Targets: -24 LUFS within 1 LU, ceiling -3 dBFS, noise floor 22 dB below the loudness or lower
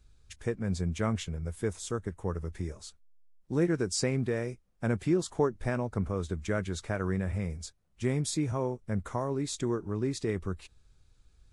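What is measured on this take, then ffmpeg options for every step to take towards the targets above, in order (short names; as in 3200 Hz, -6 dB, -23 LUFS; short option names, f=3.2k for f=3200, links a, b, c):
loudness -32.5 LUFS; peak -14.5 dBFS; loudness target -24.0 LUFS
-> -af "volume=8.5dB"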